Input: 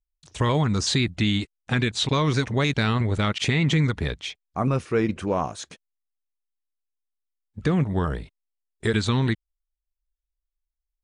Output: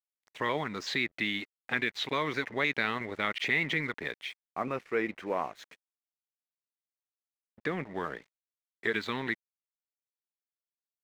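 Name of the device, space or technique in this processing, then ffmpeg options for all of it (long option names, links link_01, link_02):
pocket radio on a weak battery: -af "highpass=320,lowpass=3700,aeval=exprs='sgn(val(0))*max(abs(val(0))-0.00355,0)':channel_layout=same,equalizer=frequency=2000:width_type=o:width=0.54:gain=9,volume=-6dB"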